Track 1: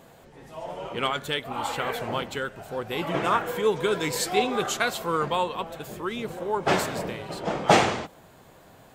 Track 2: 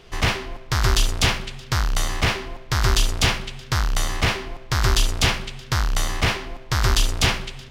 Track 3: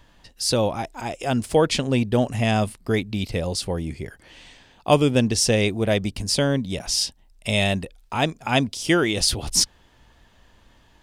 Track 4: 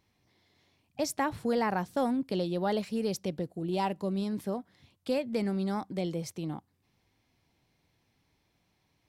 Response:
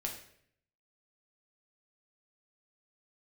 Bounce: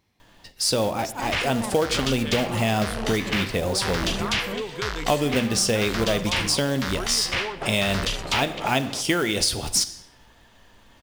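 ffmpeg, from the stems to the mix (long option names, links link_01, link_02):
-filter_complex "[0:a]acompressor=threshold=-31dB:ratio=4,adelay=950,volume=0.5dB[link_01];[1:a]equalizer=frequency=2400:width=0.4:gain=13,adelay=1100,volume=-13.5dB[link_02];[2:a]lowshelf=frequency=160:gain=-6,acrusher=bits=4:mode=log:mix=0:aa=0.000001,adelay=200,volume=0dB,asplit=2[link_03][link_04];[link_04]volume=-6dB[link_05];[3:a]asoftclip=type=hard:threshold=-35dB,volume=3dB[link_06];[4:a]atrim=start_sample=2205[link_07];[link_05][link_07]afir=irnorm=-1:irlink=0[link_08];[link_01][link_02][link_03][link_06][link_08]amix=inputs=5:normalize=0,acompressor=threshold=-19dB:ratio=4"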